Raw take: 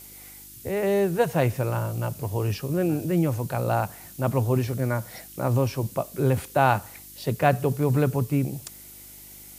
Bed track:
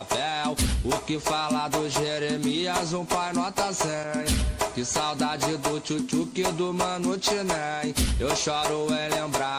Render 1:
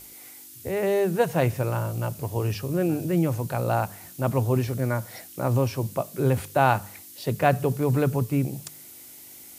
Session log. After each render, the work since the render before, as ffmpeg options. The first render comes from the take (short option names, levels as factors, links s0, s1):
-af "bandreject=f=50:t=h:w=4,bandreject=f=100:t=h:w=4,bandreject=f=150:t=h:w=4,bandreject=f=200:t=h:w=4"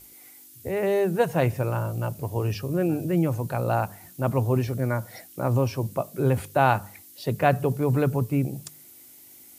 -af "afftdn=nr=6:nf=-46"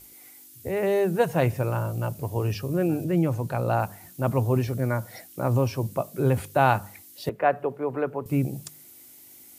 -filter_complex "[0:a]asettb=1/sr,asplit=3[s0][s1][s2];[s0]atrim=end=3.044[s3];[s1]atrim=start=3.04:end=3.8,asetpts=PTS-STARTPTS,afade=t=in:d=0.004:c=qsin,afade=t=out:st=0.756:d=0.004:c=qsin,highshelf=f=8200:g=-5.5[s4];[s2]atrim=start=3.796[s5];[s3][s4]acrossfade=d=0.004:c1=hsin:c2=qsin[s6];[s6][s5]acrossfade=d=0.004:c1=qsin:c2=hsin,asettb=1/sr,asplit=3[s7][s8][s9];[s7]atrim=end=7.294[s10];[s8]atrim=start=7.29:end=8.26,asetpts=PTS-STARTPTS,afade=t=in:d=0.004:c=qsin,afade=t=out:st=0.966:d=0.004:c=qsin,acrossover=split=310 2400:gain=0.112 1 0.0708[s11][s12][s13];[s11][s12][s13]amix=inputs=3:normalize=0[s14];[s9]atrim=start=8.256[s15];[s10][s14]acrossfade=d=0.004:c1=hsin:c2=qsin[s16];[s16][s15]acrossfade=d=0.004:c1=qsin:c2=hsin"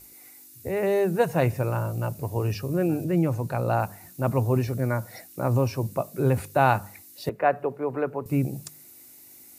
-af "bandreject=f=3200:w=6.7"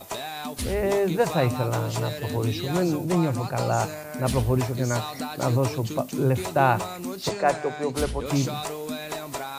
-filter_complex "[1:a]volume=0.473[s0];[0:a][s0]amix=inputs=2:normalize=0"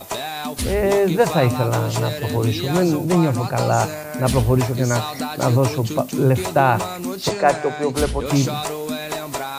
-af "volume=2,alimiter=limit=0.708:level=0:latency=1"